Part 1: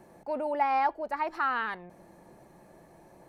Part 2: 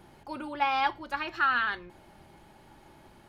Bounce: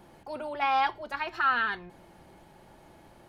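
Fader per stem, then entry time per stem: −4.0, −1.5 decibels; 0.00, 0.00 seconds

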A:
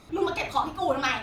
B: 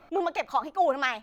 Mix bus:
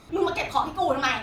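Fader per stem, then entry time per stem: +1.5, −8.5 decibels; 0.00, 0.00 seconds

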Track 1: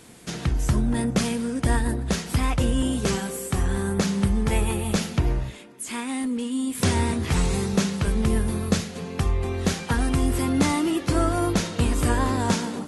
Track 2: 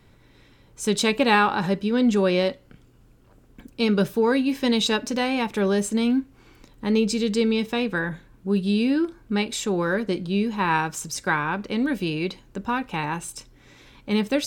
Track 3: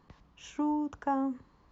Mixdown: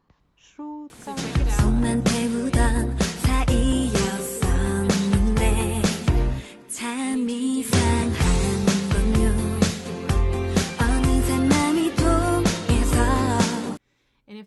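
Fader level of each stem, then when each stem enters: +2.5, −17.5, −5.0 decibels; 0.90, 0.20, 0.00 seconds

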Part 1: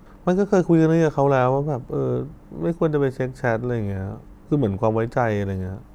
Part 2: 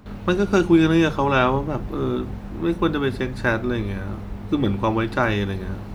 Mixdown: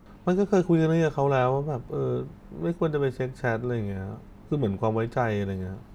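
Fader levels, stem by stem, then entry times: −5.5, −14.5 decibels; 0.00, 0.00 seconds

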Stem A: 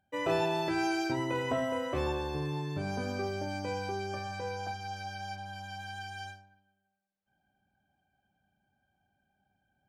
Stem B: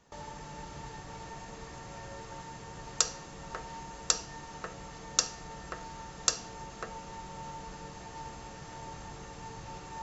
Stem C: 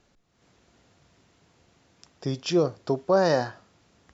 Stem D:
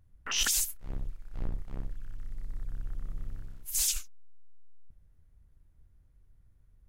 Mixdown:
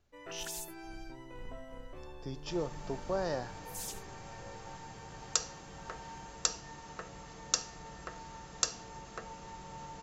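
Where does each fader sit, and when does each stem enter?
−18.0, −3.5, −13.0, −14.0 decibels; 0.00, 2.35, 0.00, 0.00 seconds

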